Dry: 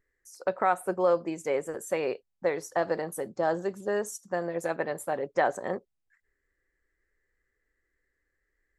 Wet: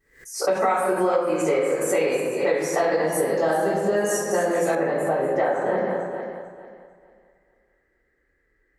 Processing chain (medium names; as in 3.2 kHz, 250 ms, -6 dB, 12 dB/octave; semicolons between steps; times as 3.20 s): backward echo that repeats 223 ms, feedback 51%, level -9 dB; high-pass 54 Hz 12 dB/octave; reverberation RT60 1.1 s, pre-delay 3 ms, DRR -11 dB; compression 6:1, threshold -17 dBFS, peak gain reduction 12 dB; treble shelf 2.7 kHz +5 dB, from 4.75 s -9 dB; swell ahead of each attack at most 120 dB/s; trim -1.5 dB